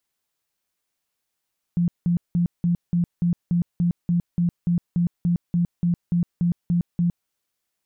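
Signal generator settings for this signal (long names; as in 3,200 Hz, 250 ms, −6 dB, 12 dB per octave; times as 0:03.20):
tone bursts 173 Hz, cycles 19, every 0.29 s, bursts 19, −17 dBFS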